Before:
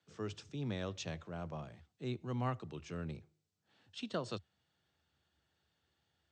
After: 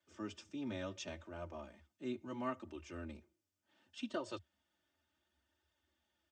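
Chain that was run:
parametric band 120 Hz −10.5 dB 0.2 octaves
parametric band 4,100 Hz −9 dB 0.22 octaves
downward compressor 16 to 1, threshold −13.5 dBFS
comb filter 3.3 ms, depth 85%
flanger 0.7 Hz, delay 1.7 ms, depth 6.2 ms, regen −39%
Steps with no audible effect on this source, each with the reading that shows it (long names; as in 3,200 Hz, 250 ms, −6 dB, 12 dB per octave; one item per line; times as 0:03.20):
downward compressor, threshold −13.5 dBFS: peak of its input −23.0 dBFS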